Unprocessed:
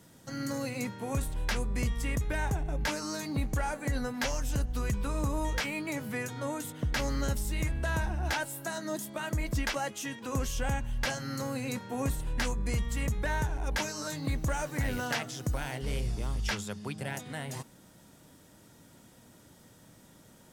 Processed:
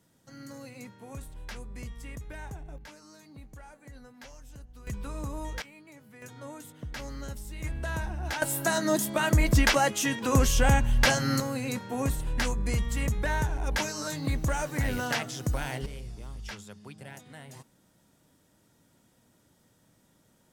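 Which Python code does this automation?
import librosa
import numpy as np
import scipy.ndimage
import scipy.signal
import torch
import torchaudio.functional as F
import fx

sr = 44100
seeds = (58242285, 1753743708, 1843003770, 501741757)

y = fx.gain(x, sr, db=fx.steps((0.0, -10.0), (2.78, -17.0), (4.87, -5.0), (5.62, -17.0), (6.22, -8.0), (7.64, -2.0), (8.42, 9.5), (11.4, 2.5), (15.86, -8.5)))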